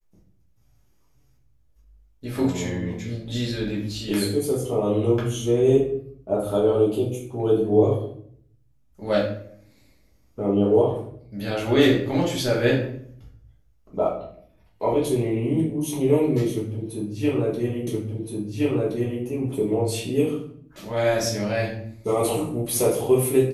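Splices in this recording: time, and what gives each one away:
17.87 repeat of the last 1.37 s

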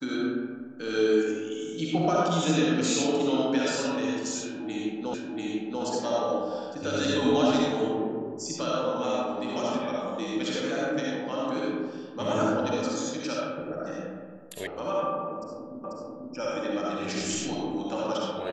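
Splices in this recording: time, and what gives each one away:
5.14 repeat of the last 0.69 s
14.67 sound cut off
15.84 repeat of the last 0.49 s

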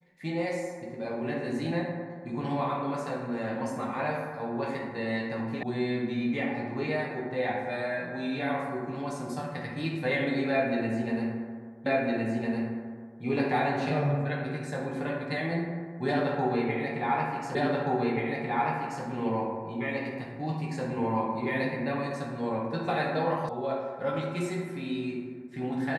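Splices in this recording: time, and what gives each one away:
5.63 sound cut off
11.86 repeat of the last 1.36 s
17.55 repeat of the last 1.48 s
23.49 sound cut off

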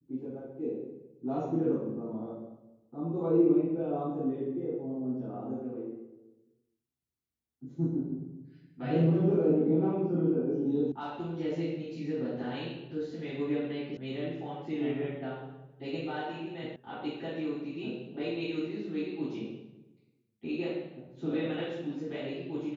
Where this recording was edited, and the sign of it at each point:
10.92 sound cut off
13.97 sound cut off
16.76 sound cut off

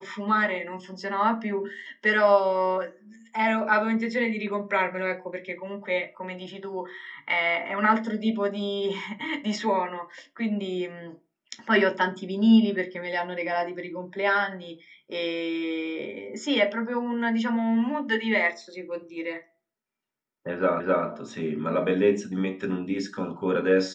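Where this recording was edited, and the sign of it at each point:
20.8 repeat of the last 0.26 s

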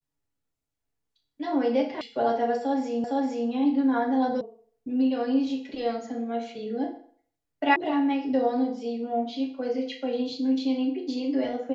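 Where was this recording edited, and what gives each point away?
2.01 sound cut off
3.04 repeat of the last 0.46 s
4.41 sound cut off
7.76 sound cut off

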